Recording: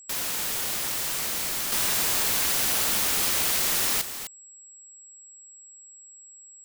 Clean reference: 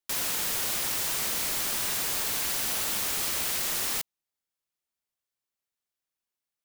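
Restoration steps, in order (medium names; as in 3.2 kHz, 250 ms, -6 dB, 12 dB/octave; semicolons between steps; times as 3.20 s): band-stop 7.7 kHz, Q 30; inverse comb 256 ms -10.5 dB; gain correction -4.5 dB, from 1.72 s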